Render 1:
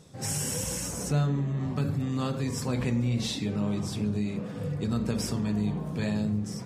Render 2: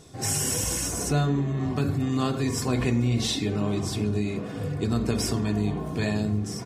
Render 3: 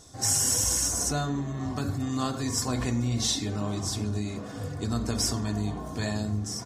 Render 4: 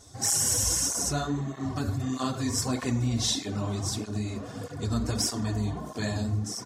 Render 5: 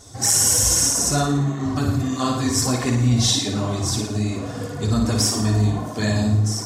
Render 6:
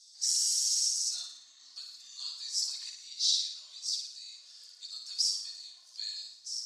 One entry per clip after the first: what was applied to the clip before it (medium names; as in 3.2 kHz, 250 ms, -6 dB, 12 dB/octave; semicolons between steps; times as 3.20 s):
comb 2.8 ms, depth 48%; trim +4.5 dB
fifteen-band graphic EQ 160 Hz -9 dB, 400 Hz -8 dB, 2.5 kHz -8 dB, 6.3 kHz +6 dB
cancelling through-zero flanger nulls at 1.6 Hz, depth 6.8 ms; trim +2.5 dB
flutter echo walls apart 9.7 m, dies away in 0.62 s; trim +7 dB
ladder band-pass 4.9 kHz, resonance 70%; trim -1 dB